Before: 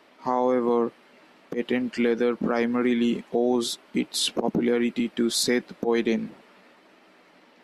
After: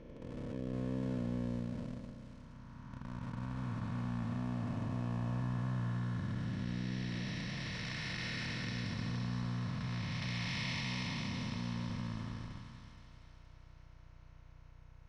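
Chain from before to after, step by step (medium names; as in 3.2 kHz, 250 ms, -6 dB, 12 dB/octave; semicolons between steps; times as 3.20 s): spectral blur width 547 ms; pre-emphasis filter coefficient 0.8; in parallel at -5 dB: Schmitt trigger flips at -42 dBFS; on the sum: hum 60 Hz, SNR 14 dB; wide varispeed 0.506×; distance through air 75 m; comb of notches 400 Hz; on a send: feedback echo behind a high-pass 471 ms, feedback 47%, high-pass 3.1 kHz, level -5 dB; on the sum: trim +1 dB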